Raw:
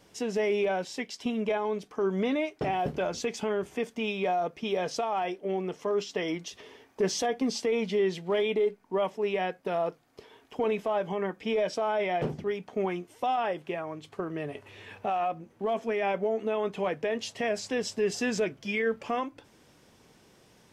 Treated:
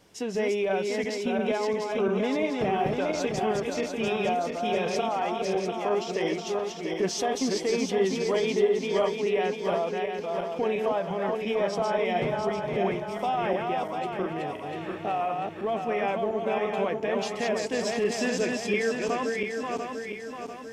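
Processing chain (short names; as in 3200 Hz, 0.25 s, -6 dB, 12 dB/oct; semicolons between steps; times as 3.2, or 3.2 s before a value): regenerating reverse delay 0.347 s, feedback 70%, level -3 dB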